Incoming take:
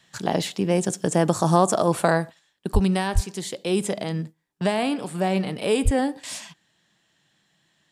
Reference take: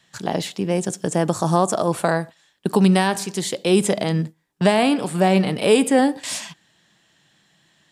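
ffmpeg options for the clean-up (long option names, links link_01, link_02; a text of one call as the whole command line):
ffmpeg -i in.wav -filter_complex "[0:a]asplit=3[link_01][link_02][link_03];[link_01]afade=type=out:start_time=2.73:duration=0.02[link_04];[link_02]highpass=frequency=140:width=0.5412,highpass=frequency=140:width=1.3066,afade=type=in:start_time=2.73:duration=0.02,afade=type=out:start_time=2.85:duration=0.02[link_05];[link_03]afade=type=in:start_time=2.85:duration=0.02[link_06];[link_04][link_05][link_06]amix=inputs=3:normalize=0,asplit=3[link_07][link_08][link_09];[link_07]afade=type=out:start_time=3.14:duration=0.02[link_10];[link_08]highpass=frequency=140:width=0.5412,highpass=frequency=140:width=1.3066,afade=type=in:start_time=3.14:duration=0.02,afade=type=out:start_time=3.26:duration=0.02[link_11];[link_09]afade=type=in:start_time=3.26:duration=0.02[link_12];[link_10][link_11][link_12]amix=inputs=3:normalize=0,asplit=3[link_13][link_14][link_15];[link_13]afade=type=out:start_time=5.84:duration=0.02[link_16];[link_14]highpass=frequency=140:width=0.5412,highpass=frequency=140:width=1.3066,afade=type=in:start_time=5.84:duration=0.02,afade=type=out:start_time=5.96:duration=0.02[link_17];[link_15]afade=type=in:start_time=5.96:duration=0.02[link_18];[link_16][link_17][link_18]amix=inputs=3:normalize=0,asetnsamples=nb_out_samples=441:pad=0,asendcmd='2.39 volume volume 6.5dB',volume=0dB" out.wav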